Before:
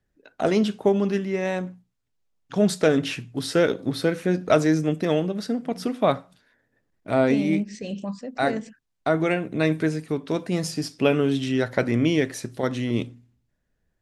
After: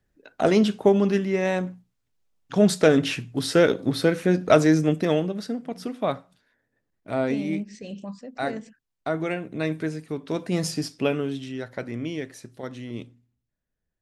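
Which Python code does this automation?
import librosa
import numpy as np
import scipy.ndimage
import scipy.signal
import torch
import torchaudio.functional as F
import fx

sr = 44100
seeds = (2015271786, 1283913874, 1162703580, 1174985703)

y = fx.gain(x, sr, db=fx.line((4.91, 2.0), (5.7, -5.0), (10.09, -5.0), (10.68, 1.5), (11.53, -10.0)))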